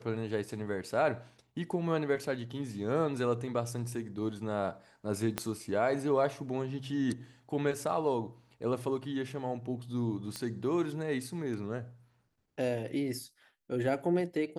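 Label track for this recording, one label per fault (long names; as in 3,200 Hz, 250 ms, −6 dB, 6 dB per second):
5.380000	5.380000	click −15 dBFS
10.360000	10.360000	click −22 dBFS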